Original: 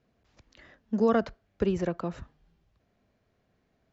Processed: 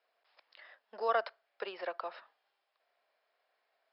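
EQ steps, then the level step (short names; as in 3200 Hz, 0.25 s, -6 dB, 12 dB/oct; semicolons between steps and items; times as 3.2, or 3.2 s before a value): HPF 620 Hz 24 dB/oct; brick-wall FIR low-pass 5400 Hz; 0.0 dB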